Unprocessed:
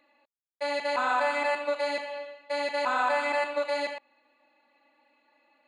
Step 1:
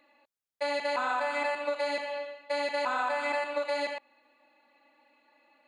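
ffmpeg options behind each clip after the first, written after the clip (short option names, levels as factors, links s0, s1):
-af "acompressor=threshold=0.0398:ratio=6,volume=1.19"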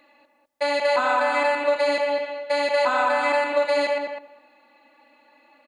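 -filter_complex "[0:a]asplit=2[s0][s1];[s1]adelay=203,lowpass=f=1400:p=1,volume=0.668,asplit=2[s2][s3];[s3]adelay=203,lowpass=f=1400:p=1,volume=0.15,asplit=2[s4][s5];[s5]adelay=203,lowpass=f=1400:p=1,volume=0.15[s6];[s0][s2][s4][s6]amix=inputs=4:normalize=0,volume=2.37"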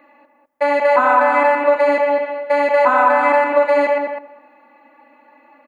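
-af "equalizer=f=250:t=o:w=1:g=8,equalizer=f=500:t=o:w=1:g=4,equalizer=f=1000:t=o:w=1:g=8,equalizer=f=2000:t=o:w=1:g=6,equalizer=f=4000:t=o:w=1:g=-10,equalizer=f=8000:t=o:w=1:g=-5"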